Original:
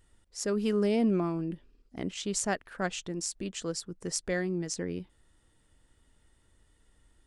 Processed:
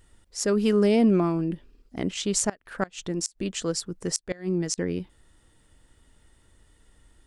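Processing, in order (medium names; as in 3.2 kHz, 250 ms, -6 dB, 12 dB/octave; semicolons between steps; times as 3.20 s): 2.43–4.78 s: inverted gate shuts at -20 dBFS, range -24 dB; trim +6.5 dB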